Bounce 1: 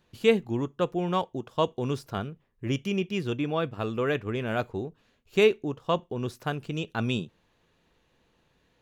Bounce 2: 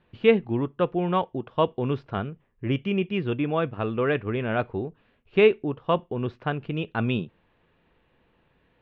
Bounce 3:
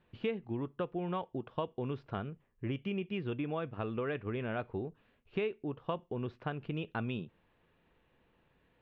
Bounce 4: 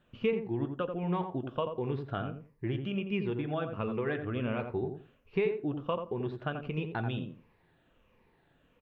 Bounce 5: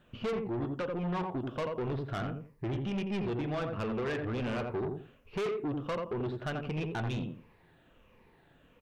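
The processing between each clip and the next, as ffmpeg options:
ffmpeg -i in.wav -af "lowpass=frequency=3000:width=0.5412,lowpass=frequency=3000:width=1.3066,volume=3dB" out.wav
ffmpeg -i in.wav -af "acompressor=threshold=-27dB:ratio=5,volume=-5.5dB" out.wav
ffmpeg -i in.wav -filter_complex "[0:a]afftfilt=real='re*pow(10,8/40*sin(2*PI*(0.84*log(max(b,1)*sr/1024/100)/log(2)-(-1.4)*(pts-256)/sr)))':imag='im*pow(10,8/40*sin(2*PI*(0.84*log(max(b,1)*sr/1024/100)/log(2)-(-1.4)*(pts-256)/sr)))':win_size=1024:overlap=0.75,asplit=2[link_01][link_02];[link_02]adelay=86,lowpass=frequency=1200:poles=1,volume=-5.5dB,asplit=2[link_03][link_04];[link_04]adelay=86,lowpass=frequency=1200:poles=1,volume=0.21,asplit=2[link_05][link_06];[link_06]adelay=86,lowpass=frequency=1200:poles=1,volume=0.21[link_07];[link_01][link_03][link_05][link_07]amix=inputs=4:normalize=0,flanger=delay=4.9:depth=2.9:regen=-74:speed=0.31:shape=sinusoidal,volume=6dB" out.wav
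ffmpeg -i in.wav -af "asoftclip=type=tanh:threshold=-35dB,volume=5dB" out.wav

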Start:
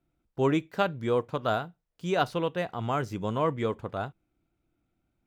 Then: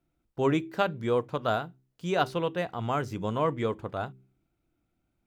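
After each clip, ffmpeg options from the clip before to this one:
ffmpeg -i in.wav -af "bandreject=frequency=65.12:width_type=h:width=4,bandreject=frequency=130.24:width_type=h:width=4,bandreject=frequency=195.36:width_type=h:width=4,bandreject=frequency=260.48:width_type=h:width=4,bandreject=frequency=325.6:width_type=h:width=4,bandreject=frequency=390.72:width_type=h:width=4" out.wav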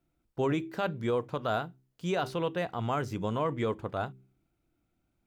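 ffmpeg -i in.wav -af "alimiter=limit=-20.5dB:level=0:latency=1:release=34" out.wav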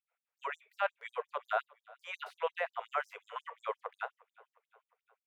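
ffmpeg -i in.wav -af "highshelf=frequency=3300:width_type=q:width=1.5:gain=-13,aecho=1:1:356|712|1068|1424:0.0631|0.0353|0.0198|0.0111,afftfilt=real='re*gte(b*sr/1024,420*pow(5100/420,0.5+0.5*sin(2*PI*5.6*pts/sr)))':imag='im*gte(b*sr/1024,420*pow(5100/420,0.5+0.5*sin(2*PI*5.6*pts/sr)))':win_size=1024:overlap=0.75" out.wav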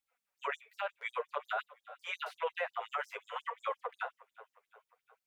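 ffmpeg -i in.wav -af "alimiter=level_in=6dB:limit=-24dB:level=0:latency=1:release=32,volume=-6dB,flanger=delay=3.6:depth=6.3:regen=2:speed=0.54:shape=sinusoidal,volume=8dB" out.wav

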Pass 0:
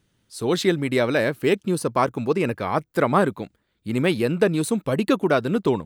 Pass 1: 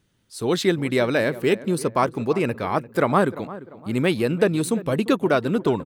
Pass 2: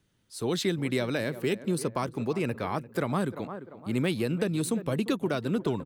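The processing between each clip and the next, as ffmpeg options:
ffmpeg -i in.wav -filter_complex "[0:a]asplit=2[link_01][link_02];[link_02]adelay=346,lowpass=frequency=1600:poles=1,volume=-16dB,asplit=2[link_03][link_04];[link_04]adelay=346,lowpass=frequency=1600:poles=1,volume=0.41,asplit=2[link_05][link_06];[link_06]adelay=346,lowpass=frequency=1600:poles=1,volume=0.41,asplit=2[link_07][link_08];[link_08]adelay=346,lowpass=frequency=1600:poles=1,volume=0.41[link_09];[link_01][link_03][link_05][link_07][link_09]amix=inputs=5:normalize=0" out.wav
ffmpeg -i in.wav -filter_complex "[0:a]acrossover=split=240|3000[link_01][link_02][link_03];[link_02]acompressor=threshold=-24dB:ratio=6[link_04];[link_01][link_04][link_03]amix=inputs=3:normalize=0,volume=-4dB" out.wav

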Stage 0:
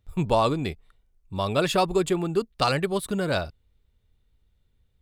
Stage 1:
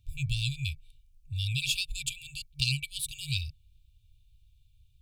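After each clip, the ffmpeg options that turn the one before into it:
ffmpeg -i in.wav -filter_complex "[0:a]afftfilt=real='re*(1-between(b*sr/4096,150,2300))':imag='im*(1-between(b*sr/4096,150,2300))':win_size=4096:overlap=0.75,asplit=2[link_01][link_02];[link_02]acompressor=threshold=-39dB:ratio=6,volume=0dB[link_03];[link_01][link_03]amix=inputs=2:normalize=0,volume=-1dB" out.wav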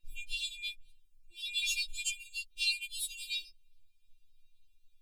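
ffmpeg -i in.wav -af "afftfilt=real='re*4*eq(mod(b,16),0)':imag='im*4*eq(mod(b,16),0)':win_size=2048:overlap=0.75" out.wav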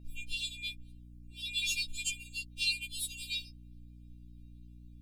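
ffmpeg -i in.wav -af "aeval=exprs='val(0)+0.00282*(sin(2*PI*60*n/s)+sin(2*PI*2*60*n/s)/2+sin(2*PI*3*60*n/s)/3+sin(2*PI*4*60*n/s)/4+sin(2*PI*5*60*n/s)/5)':channel_layout=same" out.wav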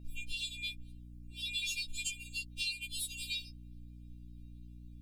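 ffmpeg -i in.wav -af "acompressor=threshold=-36dB:ratio=4,volume=1.5dB" out.wav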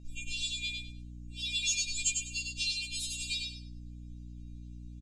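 ffmpeg -i in.wav -af "lowpass=frequency=6700:width_type=q:width=4.2,aecho=1:1:100|200|300:0.631|0.158|0.0394" out.wav

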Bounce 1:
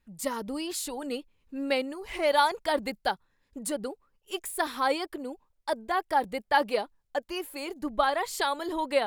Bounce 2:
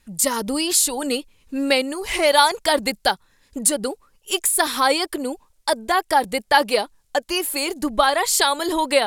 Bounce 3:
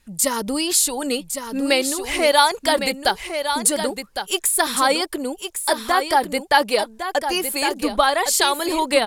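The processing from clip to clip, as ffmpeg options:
ffmpeg -i in.wav -filter_complex "[0:a]lowpass=10000,aemphasis=mode=production:type=75kf,asplit=2[link_01][link_02];[link_02]acompressor=threshold=-32dB:ratio=6,volume=1dB[link_03];[link_01][link_03]amix=inputs=2:normalize=0,volume=4.5dB" out.wav
ffmpeg -i in.wav -af "aecho=1:1:1108:0.398" out.wav

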